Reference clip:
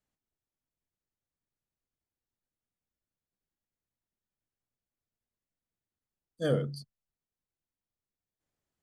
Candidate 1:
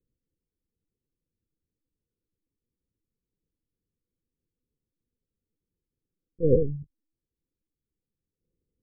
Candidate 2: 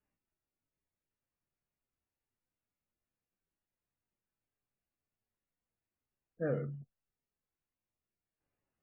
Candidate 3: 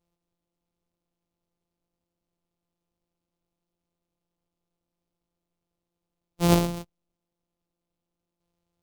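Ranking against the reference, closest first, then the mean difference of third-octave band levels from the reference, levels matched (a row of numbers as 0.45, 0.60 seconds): 2, 1, 3; 5.5, 9.5, 13.0 decibels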